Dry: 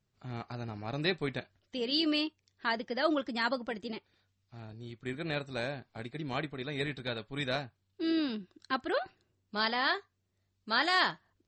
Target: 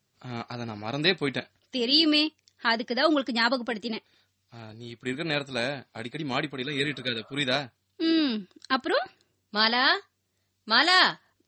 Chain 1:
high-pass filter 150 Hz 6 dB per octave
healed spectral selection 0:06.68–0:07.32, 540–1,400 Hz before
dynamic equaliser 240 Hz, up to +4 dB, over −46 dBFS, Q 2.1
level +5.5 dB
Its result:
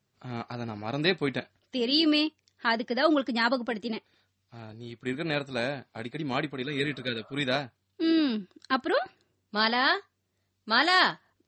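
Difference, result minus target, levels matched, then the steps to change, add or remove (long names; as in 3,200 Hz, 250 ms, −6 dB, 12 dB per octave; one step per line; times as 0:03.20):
8,000 Hz band −4.0 dB
add after high-pass filter: high-shelf EQ 2,900 Hz +7 dB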